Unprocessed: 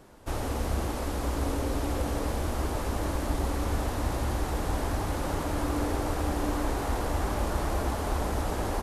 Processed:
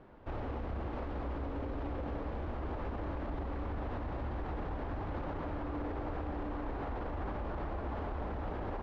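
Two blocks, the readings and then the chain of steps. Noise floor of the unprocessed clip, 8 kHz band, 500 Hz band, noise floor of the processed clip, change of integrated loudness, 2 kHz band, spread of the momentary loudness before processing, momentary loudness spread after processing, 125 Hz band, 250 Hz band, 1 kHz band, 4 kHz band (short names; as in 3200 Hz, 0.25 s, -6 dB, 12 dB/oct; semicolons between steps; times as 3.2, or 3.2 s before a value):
-33 dBFS, under -35 dB, -8.0 dB, -40 dBFS, -9.0 dB, -10.0 dB, 1 LU, 1 LU, -9.0 dB, -8.5 dB, -8.5 dB, -18.0 dB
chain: Bessel low-pass 2100 Hz, order 4; limiter -28 dBFS, peak gain reduction 11 dB; gain -2.5 dB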